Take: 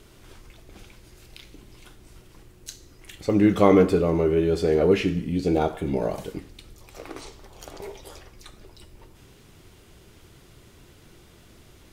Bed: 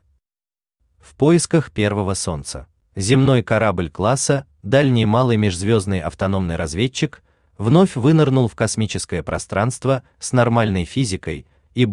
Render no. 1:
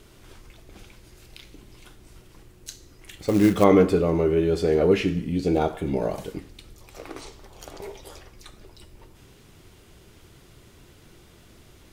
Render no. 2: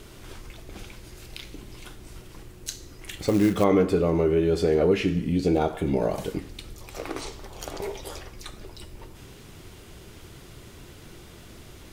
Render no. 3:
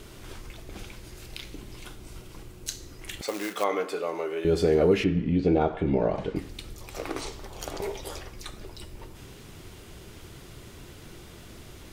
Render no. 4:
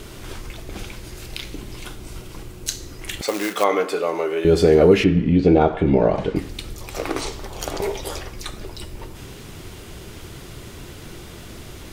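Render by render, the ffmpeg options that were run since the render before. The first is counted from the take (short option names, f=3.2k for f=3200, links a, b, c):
-filter_complex "[0:a]asettb=1/sr,asplit=3[a][b][c];[a]atrim=end=3.214[d];[b]atrim=start=3.21:end=3.64,asetpts=PTS-STARTPTS,afade=t=in:d=0.004:c=qsin,afade=t=out:st=0.426:d=0.004:c=qsin,acrusher=bits=5:mode=log:mix=0:aa=0.000001[e];[c]atrim=start=3.636[f];[d][e]acrossfade=d=0.004:c1=hsin:c2=qsin[g];[g][f]acrossfade=d=0.004:c1=qsin:c2=hsin"
-filter_complex "[0:a]asplit=2[a][b];[b]alimiter=limit=-14dB:level=0:latency=1:release=385,volume=-0.5dB[c];[a][c]amix=inputs=2:normalize=0,acompressor=threshold=-28dB:ratio=1.5"
-filter_complex "[0:a]asettb=1/sr,asplit=3[a][b][c];[a]atrim=end=1.884[d];[b]atrim=start=1.88:end=2.67,asetpts=PTS-STARTPTS,afade=t=in:d=0.004:c=qsin,afade=t=out:st=0.786:d=0.004:c=qsin,bandreject=f=1.8k:w=12[e];[c]atrim=start=2.666[f];[d][e]acrossfade=d=0.004:c1=hsin:c2=qsin[g];[g][f]acrossfade=d=0.004:c1=qsin:c2=hsin,asettb=1/sr,asplit=3[h][i][j];[h]atrim=end=3.214[k];[i]atrim=start=3.21:end=4.45,asetpts=PTS-STARTPTS,afade=t=in:d=0.004:c=qsin,afade=t=out:st=1.236:d=0.004:c=qsin,highpass=680[l];[j]atrim=start=4.446[m];[k][l]acrossfade=d=0.004:c1=hsin:c2=qsin[n];[n][m]acrossfade=d=0.004:c1=qsin:c2=hsin,asettb=1/sr,asplit=3[o][p][q];[o]atrim=end=5.044[r];[p]atrim=start=5.04:end=6.36,asetpts=PTS-STARTPTS,afade=t=in:d=0.004:c=qsin,afade=t=out:st=1.316:d=0.004:c=qsin,lowpass=2.8k[s];[q]atrim=start=6.356[t];[r][s]acrossfade=d=0.004:c1=hsin:c2=qsin[u];[u][t]acrossfade=d=0.004:c1=qsin:c2=hsin"
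-af "volume=8dB"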